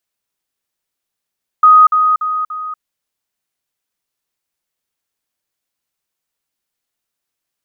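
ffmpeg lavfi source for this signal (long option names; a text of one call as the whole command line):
ffmpeg -f lavfi -i "aevalsrc='pow(10,(-3-6*floor(t/0.29))/20)*sin(2*PI*1250*t)*clip(min(mod(t,0.29),0.24-mod(t,0.29))/0.005,0,1)':duration=1.16:sample_rate=44100" out.wav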